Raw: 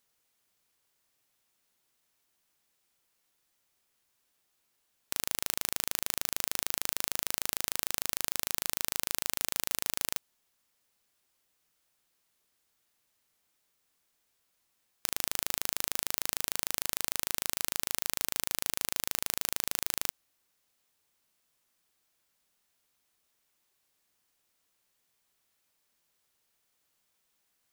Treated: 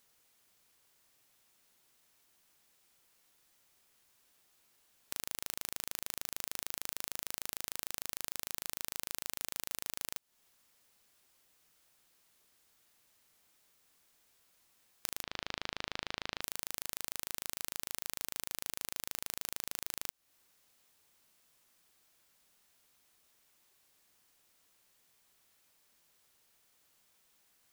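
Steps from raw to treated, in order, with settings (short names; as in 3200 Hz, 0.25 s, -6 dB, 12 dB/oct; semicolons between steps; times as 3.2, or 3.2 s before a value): 15.23–16.41 LPF 4400 Hz 24 dB/oct; compressor 5:1, threshold -39 dBFS, peak gain reduction 13.5 dB; gain +5.5 dB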